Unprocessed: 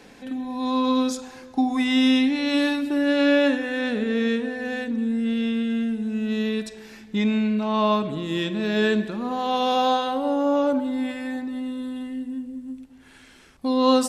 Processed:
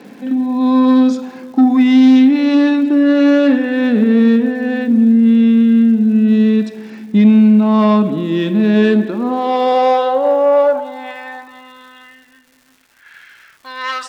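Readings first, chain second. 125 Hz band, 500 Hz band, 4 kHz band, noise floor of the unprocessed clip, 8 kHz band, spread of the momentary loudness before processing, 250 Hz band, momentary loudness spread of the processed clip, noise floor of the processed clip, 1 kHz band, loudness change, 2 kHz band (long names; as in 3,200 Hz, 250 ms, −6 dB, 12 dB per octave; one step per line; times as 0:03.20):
+13.0 dB, +8.5 dB, 0.0 dB, −49 dBFS, can't be measured, 12 LU, +12.0 dB, 12 LU, −51 dBFS, +6.5 dB, +11.5 dB, +4.0 dB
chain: low-pass filter 6,300 Hz
high-shelf EQ 3,900 Hz −11.5 dB
harmonic generator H 5 −16 dB, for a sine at −8 dBFS
high-pass filter sweep 210 Hz → 1,600 Hz, 0:08.67–0:12.37
surface crackle 380 per second −42 dBFS
level +2.5 dB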